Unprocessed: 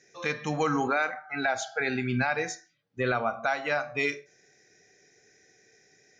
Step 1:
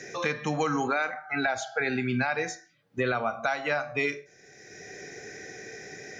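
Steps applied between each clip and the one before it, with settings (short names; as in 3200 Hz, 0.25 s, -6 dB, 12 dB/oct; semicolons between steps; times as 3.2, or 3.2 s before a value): three-band squash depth 70%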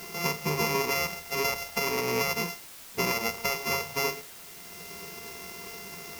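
sample sorter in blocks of 64 samples; ripple EQ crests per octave 0.81, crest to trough 15 dB; in parallel at -6.5 dB: requantised 6-bit, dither triangular; on the sum: gain -4 dB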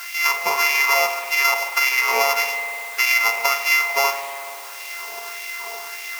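LFO high-pass sine 1.7 Hz 690–2200 Hz; spring tank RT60 2.7 s, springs 49 ms, chirp 30 ms, DRR 6.5 dB; gain +7.5 dB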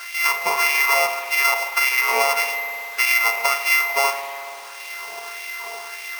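careless resampling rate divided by 3×, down filtered, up hold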